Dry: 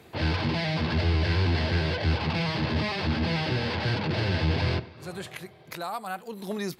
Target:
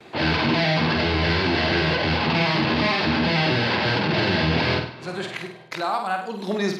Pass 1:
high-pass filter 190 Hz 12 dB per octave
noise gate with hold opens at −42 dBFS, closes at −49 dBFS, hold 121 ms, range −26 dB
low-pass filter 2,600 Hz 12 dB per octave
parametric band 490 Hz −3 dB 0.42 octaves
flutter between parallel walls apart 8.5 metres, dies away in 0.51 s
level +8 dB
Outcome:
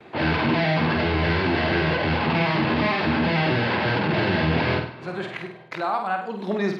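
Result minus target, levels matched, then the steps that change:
4,000 Hz band −5.0 dB
change: low-pass filter 5,400 Hz 12 dB per octave

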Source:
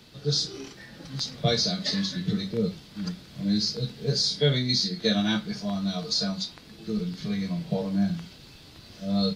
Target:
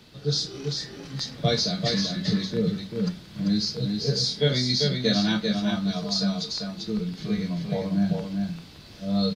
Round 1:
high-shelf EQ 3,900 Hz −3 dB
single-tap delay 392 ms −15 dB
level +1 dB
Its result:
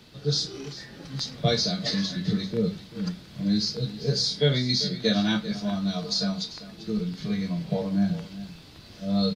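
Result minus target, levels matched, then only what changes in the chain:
echo-to-direct −10.5 dB
change: single-tap delay 392 ms −4.5 dB

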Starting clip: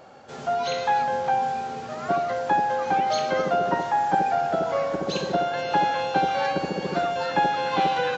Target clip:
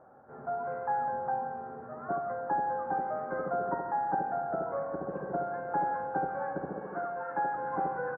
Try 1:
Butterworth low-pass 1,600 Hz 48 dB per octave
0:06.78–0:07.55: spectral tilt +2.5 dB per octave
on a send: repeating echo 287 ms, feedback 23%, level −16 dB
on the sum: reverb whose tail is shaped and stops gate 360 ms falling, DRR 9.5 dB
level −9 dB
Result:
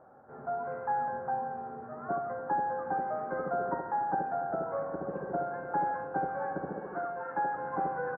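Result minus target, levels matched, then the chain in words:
echo 121 ms late
Butterworth low-pass 1,600 Hz 48 dB per octave
0:06.78–0:07.55: spectral tilt +2.5 dB per octave
on a send: repeating echo 166 ms, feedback 23%, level −16 dB
on the sum: reverb whose tail is shaped and stops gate 360 ms falling, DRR 9.5 dB
level −9 dB

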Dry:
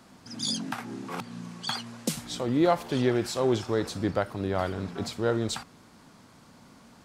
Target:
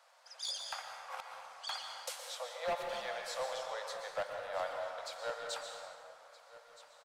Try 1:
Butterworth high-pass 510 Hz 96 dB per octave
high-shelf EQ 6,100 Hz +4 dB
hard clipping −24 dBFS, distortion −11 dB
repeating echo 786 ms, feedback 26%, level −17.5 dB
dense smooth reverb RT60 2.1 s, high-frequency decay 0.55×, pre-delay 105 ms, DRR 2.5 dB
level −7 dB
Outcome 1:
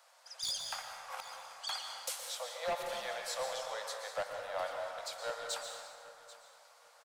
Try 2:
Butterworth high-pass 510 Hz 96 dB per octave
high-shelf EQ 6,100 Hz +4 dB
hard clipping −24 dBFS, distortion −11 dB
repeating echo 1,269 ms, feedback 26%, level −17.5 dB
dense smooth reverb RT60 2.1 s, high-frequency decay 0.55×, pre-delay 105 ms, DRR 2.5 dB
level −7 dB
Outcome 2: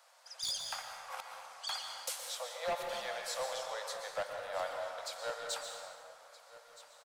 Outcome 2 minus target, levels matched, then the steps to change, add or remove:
8,000 Hz band +3.5 dB
change: high-shelf EQ 6,100 Hz −5 dB

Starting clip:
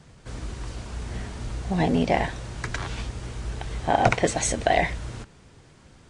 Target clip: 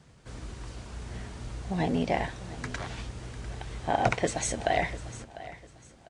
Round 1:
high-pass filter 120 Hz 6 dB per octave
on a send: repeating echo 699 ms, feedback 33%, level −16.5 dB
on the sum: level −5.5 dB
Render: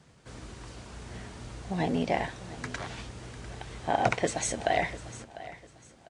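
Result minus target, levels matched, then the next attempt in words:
125 Hz band −3.0 dB
high-pass filter 33 Hz 6 dB per octave
on a send: repeating echo 699 ms, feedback 33%, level −16.5 dB
on the sum: level −5.5 dB

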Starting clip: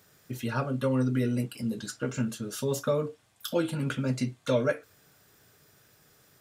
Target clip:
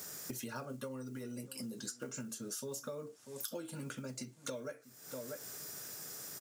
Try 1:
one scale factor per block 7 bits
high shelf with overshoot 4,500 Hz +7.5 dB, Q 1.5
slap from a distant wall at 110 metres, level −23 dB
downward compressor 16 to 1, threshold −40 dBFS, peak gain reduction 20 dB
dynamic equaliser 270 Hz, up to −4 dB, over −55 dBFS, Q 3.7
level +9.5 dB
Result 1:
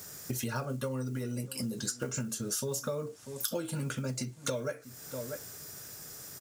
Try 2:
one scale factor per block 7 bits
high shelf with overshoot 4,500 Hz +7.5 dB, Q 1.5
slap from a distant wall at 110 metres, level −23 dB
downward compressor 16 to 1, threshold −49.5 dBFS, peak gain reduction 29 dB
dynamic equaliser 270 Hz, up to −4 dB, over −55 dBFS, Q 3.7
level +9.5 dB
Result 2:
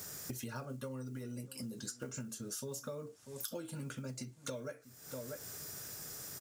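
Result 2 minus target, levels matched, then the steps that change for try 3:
125 Hz band +4.0 dB
add after one scale factor per block: high-pass filter 170 Hz 12 dB per octave

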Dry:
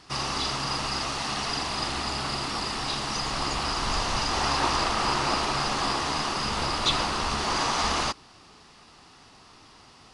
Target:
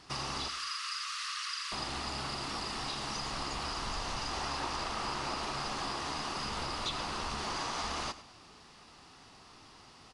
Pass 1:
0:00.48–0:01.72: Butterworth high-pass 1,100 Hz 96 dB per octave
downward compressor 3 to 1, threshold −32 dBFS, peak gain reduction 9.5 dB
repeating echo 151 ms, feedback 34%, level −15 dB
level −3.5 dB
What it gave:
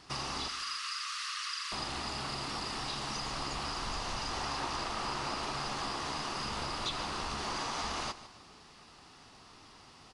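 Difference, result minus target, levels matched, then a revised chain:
echo 48 ms late
0:00.48–0:01.72: Butterworth high-pass 1,100 Hz 96 dB per octave
downward compressor 3 to 1, threshold −32 dBFS, peak gain reduction 9.5 dB
repeating echo 103 ms, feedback 34%, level −15 dB
level −3.5 dB

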